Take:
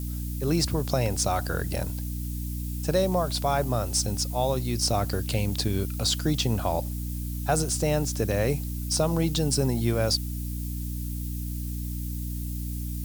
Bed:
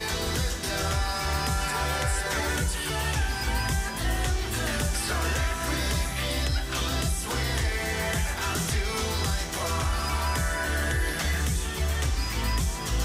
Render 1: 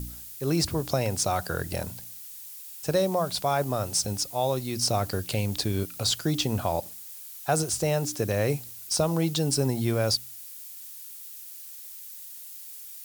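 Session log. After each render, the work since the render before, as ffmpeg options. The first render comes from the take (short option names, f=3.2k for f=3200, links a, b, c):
-af "bandreject=f=60:t=h:w=4,bandreject=f=120:t=h:w=4,bandreject=f=180:t=h:w=4,bandreject=f=240:t=h:w=4,bandreject=f=300:t=h:w=4"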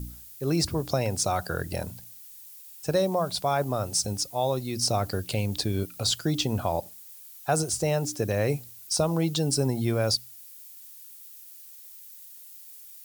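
-af "afftdn=nr=6:nf=-43"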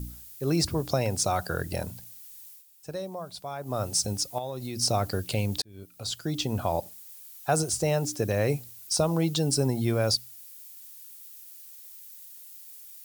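-filter_complex "[0:a]asettb=1/sr,asplit=3[a][b][c];[a]atrim=end=4.384[d];[b]atrim=start=4.38:end=4.8,asetpts=PTS-STARTPTS,afade=t=in:d=0.004:c=qsin,afade=t=out:st=0.416:d=0.004:c=qsin,acompressor=threshold=-30dB:ratio=6:attack=3.2:release=140:knee=1:detection=peak[e];[c]atrim=start=4.796[f];[d][e]acrossfade=d=0.004:c1=hsin:c2=qsin[g];[g][f]acrossfade=d=0.004:c1=qsin:c2=hsin,asplit=4[h][i][j][k];[h]atrim=end=2.65,asetpts=PTS-STARTPTS,afade=t=out:st=2.42:d=0.23:c=qsin:silence=0.281838[l];[i]atrim=start=2.65:end=3.63,asetpts=PTS-STARTPTS,volume=-11dB[m];[j]atrim=start=3.63:end=5.62,asetpts=PTS-STARTPTS,afade=t=in:d=0.23:c=qsin:silence=0.281838,afade=t=out:st=1.986:d=0.004:c=hsin[n];[k]atrim=start=5.62,asetpts=PTS-STARTPTS,afade=t=in:d=1.1[o];[l][m][n][o]concat=n=4:v=0:a=1"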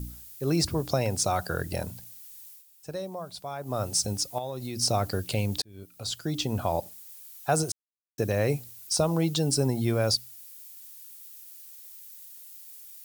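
-filter_complex "[0:a]asplit=3[a][b][c];[a]atrim=end=7.72,asetpts=PTS-STARTPTS,afade=t=out:st=7.716:d=0.004:c=hsin[d];[b]atrim=start=7.72:end=8.18,asetpts=PTS-STARTPTS,volume=0[e];[c]atrim=start=8.18,asetpts=PTS-STARTPTS,afade=t=in:d=0.004:c=hsin[f];[d][e][f]concat=n=3:v=0:a=1"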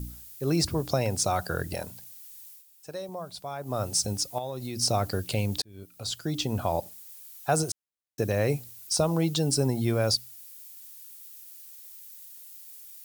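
-filter_complex "[0:a]asettb=1/sr,asplit=3[a][b][c];[a]atrim=end=1.744[d];[b]atrim=start=1.74:end=3.09,asetpts=PTS-STARTPTS,afade=t=in:d=0.004:c=qsin,afade=t=out:st=1.346:d=0.004:c=qsin,lowshelf=f=250:g=-9[e];[c]atrim=start=3.086[f];[d][e]acrossfade=d=0.004:c1=hsin:c2=qsin[g];[g][f]acrossfade=d=0.004:c1=qsin:c2=hsin"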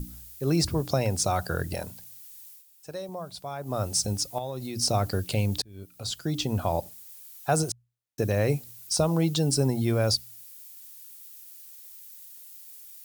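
-af "lowshelf=f=150:g=4.5,bandreject=f=60:t=h:w=6,bandreject=f=120:t=h:w=6"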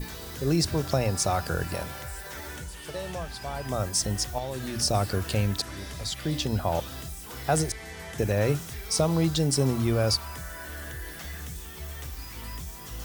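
-filter_complex "[1:a]volume=-12dB[a];[0:a][a]amix=inputs=2:normalize=0"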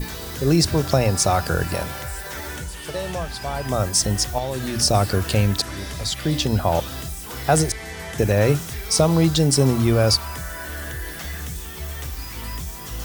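-af "volume=7dB"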